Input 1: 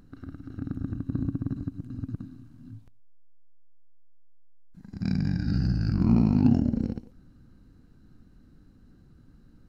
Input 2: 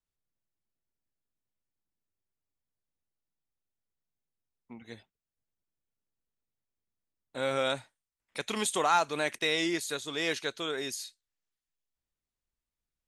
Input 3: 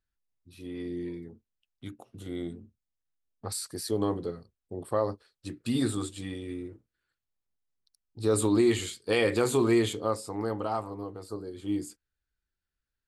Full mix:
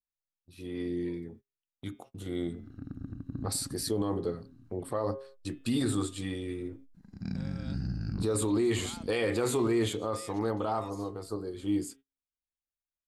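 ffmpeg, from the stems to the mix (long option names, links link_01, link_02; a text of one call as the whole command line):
ffmpeg -i stem1.wav -i stem2.wav -i stem3.wav -filter_complex "[0:a]adelay=2200,volume=-8.5dB[link_01];[1:a]acompressor=threshold=-38dB:ratio=2,volume=-15dB[link_02];[2:a]bandreject=frequency=135.3:width_type=h:width=4,bandreject=frequency=270.6:width_type=h:width=4,bandreject=frequency=405.9:width_type=h:width=4,bandreject=frequency=541.2:width_type=h:width=4,bandreject=frequency=676.5:width_type=h:width=4,bandreject=frequency=811.8:width_type=h:width=4,bandreject=frequency=947.1:width_type=h:width=4,bandreject=frequency=1082.4:width_type=h:width=4,bandreject=frequency=1217.7:width_type=h:width=4,bandreject=frequency=1353:width_type=h:width=4,bandreject=frequency=1488.3:width_type=h:width=4,bandreject=frequency=1623.6:width_type=h:width=4,bandreject=frequency=1758.9:width_type=h:width=4,bandreject=frequency=1894.2:width_type=h:width=4,bandreject=frequency=2029.5:width_type=h:width=4,bandreject=frequency=2164.8:width_type=h:width=4,bandreject=frequency=2300.1:width_type=h:width=4,bandreject=frequency=2435.4:width_type=h:width=4,bandreject=frequency=2570.7:width_type=h:width=4,bandreject=frequency=2706:width_type=h:width=4,bandreject=frequency=2841.3:width_type=h:width=4,bandreject=frequency=2976.6:width_type=h:width=4,bandreject=frequency=3111.9:width_type=h:width=4,bandreject=frequency=3247.2:width_type=h:width=4,bandreject=frequency=3382.5:width_type=h:width=4,bandreject=frequency=3517.8:width_type=h:width=4,bandreject=frequency=3653.1:width_type=h:width=4,agate=range=-25dB:threshold=-53dB:ratio=16:detection=peak,adynamicequalizer=threshold=0.00794:dfrequency=1900:dqfactor=0.7:tfrequency=1900:tqfactor=0.7:attack=5:release=100:ratio=0.375:range=2:mode=cutabove:tftype=highshelf,volume=2dB,asplit=2[link_03][link_04];[link_04]apad=whole_len=524018[link_05];[link_01][link_05]sidechaincompress=threshold=-34dB:ratio=8:attack=16:release=423[link_06];[link_06][link_02][link_03]amix=inputs=3:normalize=0,alimiter=limit=-20.5dB:level=0:latency=1:release=22" out.wav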